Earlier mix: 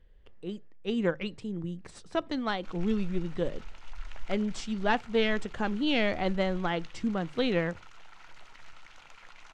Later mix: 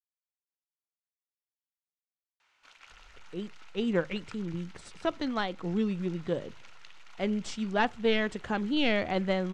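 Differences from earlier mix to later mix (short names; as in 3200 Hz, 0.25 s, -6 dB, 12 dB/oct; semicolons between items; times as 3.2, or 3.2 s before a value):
speech: entry +2.90 s; background: add HPF 1000 Hz 6 dB/oct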